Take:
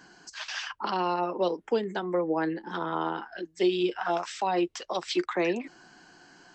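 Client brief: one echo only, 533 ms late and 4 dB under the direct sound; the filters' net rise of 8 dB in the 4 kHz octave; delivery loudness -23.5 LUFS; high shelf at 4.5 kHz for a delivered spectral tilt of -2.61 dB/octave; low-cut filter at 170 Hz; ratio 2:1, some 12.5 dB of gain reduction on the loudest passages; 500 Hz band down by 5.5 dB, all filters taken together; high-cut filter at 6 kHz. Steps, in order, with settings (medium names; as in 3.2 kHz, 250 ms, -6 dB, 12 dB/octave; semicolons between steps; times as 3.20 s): high-pass 170 Hz; low-pass 6 kHz; peaking EQ 500 Hz -8 dB; peaking EQ 4 kHz +7.5 dB; treble shelf 4.5 kHz +7.5 dB; compression 2:1, threshold -44 dBFS; delay 533 ms -4 dB; trim +15.5 dB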